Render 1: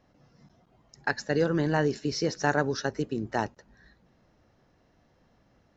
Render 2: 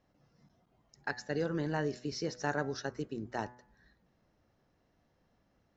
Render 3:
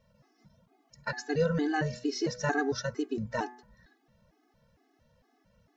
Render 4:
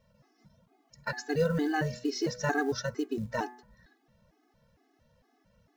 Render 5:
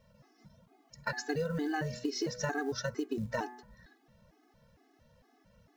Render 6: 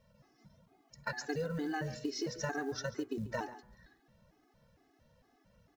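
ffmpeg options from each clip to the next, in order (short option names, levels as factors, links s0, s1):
-af "bandreject=f=123:t=h:w=4,bandreject=f=246:t=h:w=4,bandreject=f=369:t=h:w=4,bandreject=f=492:t=h:w=4,bandreject=f=615:t=h:w=4,bandreject=f=738:t=h:w=4,bandreject=f=861:t=h:w=4,bandreject=f=984:t=h:w=4,bandreject=f=1107:t=h:w=4,bandreject=f=1230:t=h:w=4,bandreject=f=1353:t=h:w=4,bandreject=f=1476:t=h:w=4,bandreject=f=1599:t=h:w=4,bandreject=f=1722:t=h:w=4,bandreject=f=1845:t=h:w=4,bandreject=f=1968:t=h:w=4,bandreject=f=2091:t=h:w=4,bandreject=f=2214:t=h:w=4,volume=0.398"
-af "afftfilt=real='re*gt(sin(2*PI*2.2*pts/sr)*(1-2*mod(floor(b*sr/1024/220),2)),0)':imag='im*gt(sin(2*PI*2.2*pts/sr)*(1-2*mod(floor(b*sr/1024/220),2)),0)':win_size=1024:overlap=0.75,volume=2.66"
-af "acrusher=bits=8:mode=log:mix=0:aa=0.000001"
-af "acompressor=threshold=0.0224:ratio=6,volume=1.33"
-af "aecho=1:1:140:0.15,volume=0.708"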